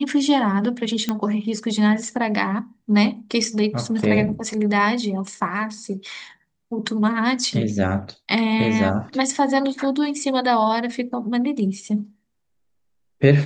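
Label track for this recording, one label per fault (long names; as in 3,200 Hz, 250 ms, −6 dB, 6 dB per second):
1.090000	1.090000	click −9 dBFS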